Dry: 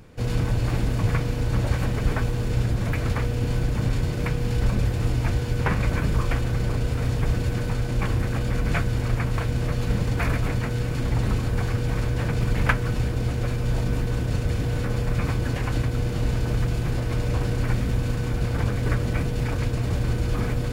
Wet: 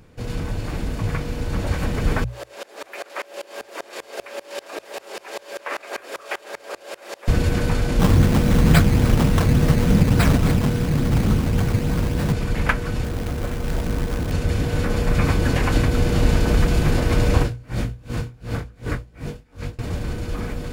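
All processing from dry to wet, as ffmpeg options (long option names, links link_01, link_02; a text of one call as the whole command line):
ffmpeg -i in.wav -filter_complex "[0:a]asettb=1/sr,asplit=3[link_01][link_02][link_03];[link_01]atrim=end=2.244[link_04];[link_02]atrim=start=2.24:end=7.28,asetpts=PTS-STARTPTS,afade=type=in:duration=0.004:curve=qsin,afade=type=out:start_time=5.036:duration=0.004:curve=qsin,highpass=frequency=350:width=0.5412,highpass=frequency=350:width=1.3066,afreqshift=89,aeval=exprs='val(0)*pow(10,-27*if(lt(mod(-5.1*n/s,1),2*abs(-5.1)/1000),1-mod(-5.1*n/s,1)/(2*abs(-5.1)/1000),(mod(-5.1*n/s,1)-2*abs(-5.1)/1000)/(1-2*abs(-5.1)/1000))/20)':channel_layout=same[link_05];[link_03]atrim=start=7.276[link_06];[link_04][link_05]acrossfade=duration=0.004:curve1=hsin:curve2=qsin[link_07];[link_07][link_06]acrossfade=duration=0.004:curve1=qsin:curve2=hsin,asettb=1/sr,asplit=3[link_08][link_09][link_10];[link_08]atrim=end=7.994[link_11];[link_09]atrim=start=7.99:end=12.33,asetpts=PTS-STARTPTS,afade=type=in:duration=0.004:curve=qsin,afade=type=out:start_time=4.336:duration=0.004:curve=qsin,acrusher=samples=14:mix=1:aa=0.000001:lfo=1:lforange=14:lforate=3.5,equalizer=frequency=160:width=0.79:gain=8[link_12];[link_10]atrim=start=12.326[link_13];[link_11][link_12]acrossfade=duration=0.004:curve1=hsin:curve2=qsin[link_14];[link_14][link_13]acrossfade=duration=0.004:curve1=qsin:curve2=hsin,asettb=1/sr,asplit=3[link_15][link_16][link_17];[link_15]atrim=end=13.044[link_18];[link_16]atrim=start=13.04:end=14.32,asetpts=PTS-STARTPTS,afade=type=in:duration=0.004:curve=qsin,afade=type=out:start_time=1.276:duration=0.004:curve=qsin,lowpass=2000,acrusher=bits=4:mode=log:mix=0:aa=0.000001[link_19];[link_17]atrim=start=14.316[link_20];[link_18][link_19]acrossfade=duration=0.004:curve1=hsin:curve2=qsin[link_21];[link_21][link_20]acrossfade=duration=0.004:curve1=qsin:curve2=hsin,asettb=1/sr,asplit=3[link_22][link_23][link_24];[link_22]atrim=end=17.434[link_25];[link_23]atrim=start=17.43:end=19.79,asetpts=PTS-STARTPTS,afade=type=in:duration=0.004:curve=qsin,afade=type=out:start_time=2.356:duration=0.004:curve=qsin,flanger=delay=17:depth=4.1:speed=2.9,aeval=exprs='val(0)*pow(10,-30*(0.5-0.5*cos(2*PI*2.7*n/s))/20)':channel_layout=same[link_26];[link_24]atrim=start=19.786[link_27];[link_25][link_26]acrossfade=duration=0.004:curve1=hsin:curve2=qsin[link_28];[link_28][link_27]acrossfade=duration=0.004:curve1=qsin:curve2=hsin,bandreject=frequency=60:width_type=h:width=6,bandreject=frequency=120:width_type=h:width=6,dynaudnorm=framelen=140:gausssize=31:maxgain=11.5dB,volume=-1.5dB" out.wav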